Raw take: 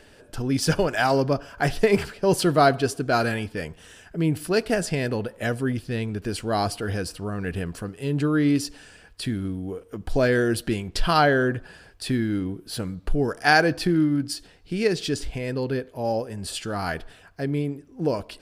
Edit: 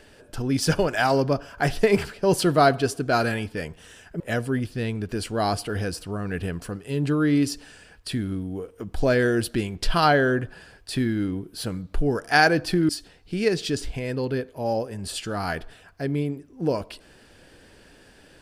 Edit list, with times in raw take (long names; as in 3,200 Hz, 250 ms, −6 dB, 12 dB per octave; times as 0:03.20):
0:04.20–0:05.33: remove
0:14.02–0:14.28: remove